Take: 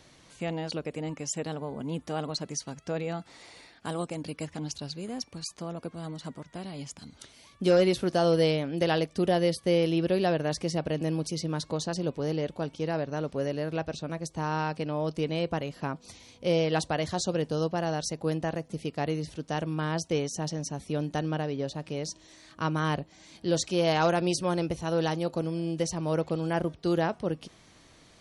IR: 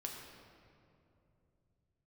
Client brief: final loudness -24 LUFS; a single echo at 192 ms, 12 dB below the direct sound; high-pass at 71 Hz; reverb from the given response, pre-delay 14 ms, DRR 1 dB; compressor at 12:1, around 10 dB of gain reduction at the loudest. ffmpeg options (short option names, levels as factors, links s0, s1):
-filter_complex "[0:a]highpass=71,acompressor=threshold=0.0355:ratio=12,aecho=1:1:192:0.251,asplit=2[s0][s1];[1:a]atrim=start_sample=2205,adelay=14[s2];[s1][s2]afir=irnorm=-1:irlink=0,volume=1.06[s3];[s0][s3]amix=inputs=2:normalize=0,volume=2.66"